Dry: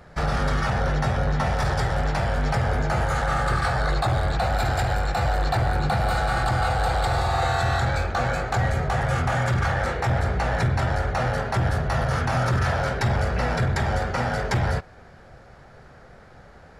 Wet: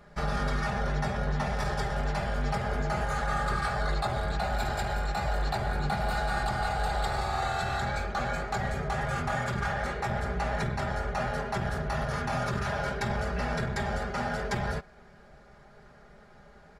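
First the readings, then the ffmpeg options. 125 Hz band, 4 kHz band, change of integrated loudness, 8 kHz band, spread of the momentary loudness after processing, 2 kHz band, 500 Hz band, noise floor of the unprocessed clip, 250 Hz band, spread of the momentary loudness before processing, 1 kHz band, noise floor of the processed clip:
-9.5 dB, -6.0 dB, -7.0 dB, -5.5 dB, 2 LU, -6.0 dB, -6.0 dB, -48 dBFS, -5.0 dB, 2 LU, -6.0 dB, -54 dBFS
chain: -af "aecho=1:1:4.9:0.69,volume=0.422"

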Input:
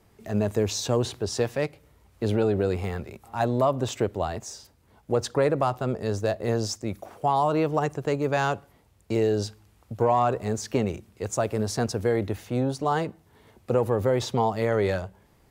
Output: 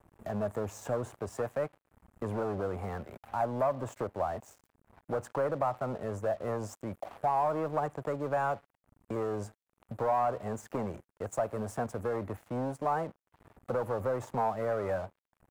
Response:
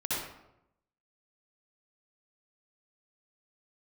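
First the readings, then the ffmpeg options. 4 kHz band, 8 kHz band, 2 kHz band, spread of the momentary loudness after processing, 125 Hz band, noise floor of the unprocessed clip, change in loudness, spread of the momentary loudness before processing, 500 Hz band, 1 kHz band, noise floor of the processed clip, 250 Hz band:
under -20 dB, -14.5 dB, -8.5 dB, 10 LU, -11.0 dB, -61 dBFS, -7.5 dB, 9 LU, -7.5 dB, -5.0 dB, under -85 dBFS, -10.5 dB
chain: -filter_complex "[0:a]asoftclip=type=tanh:threshold=0.106,acrossover=split=160|610|2400[s0][s1][s2][s3];[s0]acompressor=mode=upward:threshold=0.0141:ratio=2.5[s4];[s4][s1][s2][s3]amix=inputs=4:normalize=0,firequalizer=gain_entry='entry(260,0);entry(390,-4);entry(580,6);entry(1200,5);entry(4000,-24);entry(7400,-4)':delay=0.05:min_phase=1,aeval=exprs='sgn(val(0))*max(abs(val(0))-0.00447,0)':c=same,acompressor=threshold=0.0126:ratio=1.5,lowshelf=f=180:g=-4"

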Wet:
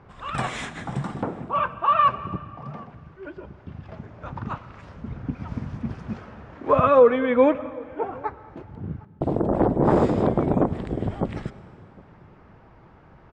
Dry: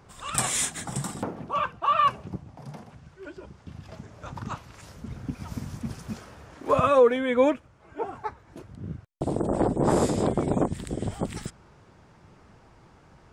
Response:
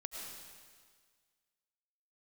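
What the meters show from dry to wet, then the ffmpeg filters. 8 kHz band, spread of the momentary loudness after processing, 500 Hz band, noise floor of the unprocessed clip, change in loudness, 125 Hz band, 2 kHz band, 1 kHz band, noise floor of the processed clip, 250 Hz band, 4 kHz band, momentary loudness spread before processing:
under -15 dB, 21 LU, +3.5 dB, -56 dBFS, +3.0 dB, +3.5 dB, +2.0 dB, +3.5 dB, -51 dBFS, +4.0 dB, no reading, 21 LU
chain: -filter_complex "[0:a]lowpass=2300,asplit=2[s0][s1];[s1]adelay=758,volume=0.0631,highshelf=f=4000:g=-17.1[s2];[s0][s2]amix=inputs=2:normalize=0,asplit=2[s3][s4];[1:a]atrim=start_sample=2205[s5];[s4][s5]afir=irnorm=-1:irlink=0,volume=0.335[s6];[s3][s6]amix=inputs=2:normalize=0,volume=1.26"

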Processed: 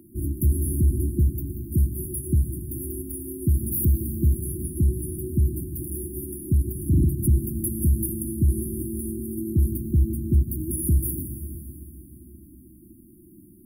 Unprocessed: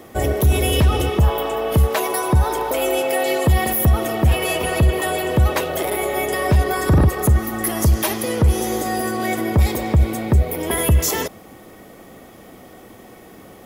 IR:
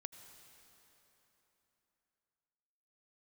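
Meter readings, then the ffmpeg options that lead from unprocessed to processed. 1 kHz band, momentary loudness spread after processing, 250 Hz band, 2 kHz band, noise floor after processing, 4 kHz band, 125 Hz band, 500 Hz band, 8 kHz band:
under -40 dB, 9 LU, -5.0 dB, under -40 dB, -50 dBFS, under -40 dB, -4.5 dB, -16.0 dB, -6.5 dB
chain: -filter_complex "[1:a]atrim=start_sample=2205[s0];[0:a][s0]afir=irnorm=-1:irlink=0,afftfilt=real='re*(1-between(b*sr/4096,370,9100))':imag='im*(1-between(b*sr/4096,370,9100))':win_size=4096:overlap=0.75"

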